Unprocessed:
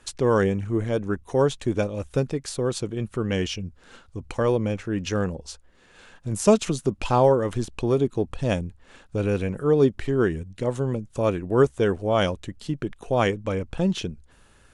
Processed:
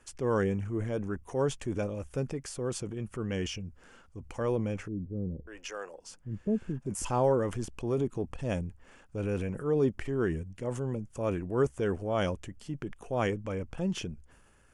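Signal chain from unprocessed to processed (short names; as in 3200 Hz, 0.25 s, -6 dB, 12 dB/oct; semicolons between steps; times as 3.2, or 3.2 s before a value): transient shaper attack -3 dB, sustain +5 dB; bell 3900 Hz -13.5 dB 0.3 oct; 4.88–7.05 bands offset in time lows, highs 0.59 s, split 440 Hz; gain -7.5 dB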